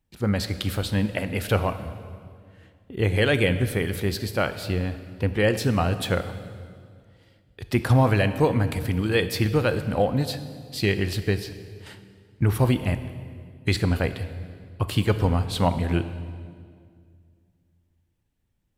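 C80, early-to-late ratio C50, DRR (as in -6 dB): 12.5 dB, 11.5 dB, 10.5 dB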